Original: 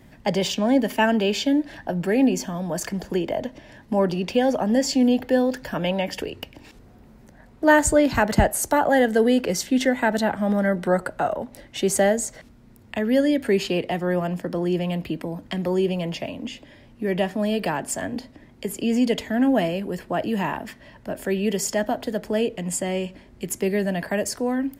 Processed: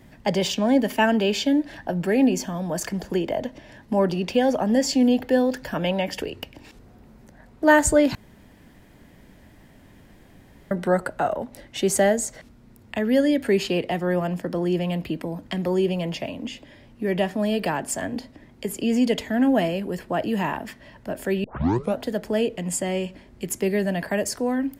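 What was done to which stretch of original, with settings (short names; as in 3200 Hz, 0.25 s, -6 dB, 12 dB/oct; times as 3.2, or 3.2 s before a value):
8.15–10.71 room tone
21.44 tape start 0.56 s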